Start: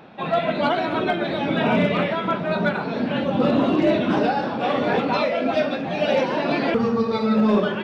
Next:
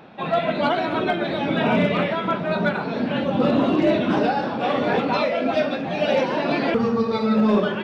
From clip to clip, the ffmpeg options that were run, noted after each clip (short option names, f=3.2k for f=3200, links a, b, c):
-af anull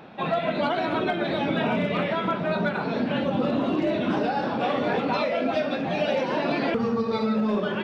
-af "acompressor=threshold=-21dB:ratio=6"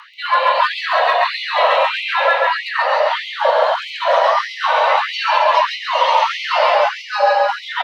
-af "afreqshift=360,aecho=1:1:136|272|408|544|680|816|952:0.708|0.368|0.191|0.0995|0.0518|0.0269|0.014,afftfilt=real='re*gte(b*sr/1024,240*pow(2000/240,0.5+0.5*sin(2*PI*1.6*pts/sr)))':imag='im*gte(b*sr/1024,240*pow(2000/240,0.5+0.5*sin(2*PI*1.6*pts/sr)))':win_size=1024:overlap=0.75,volume=9dB"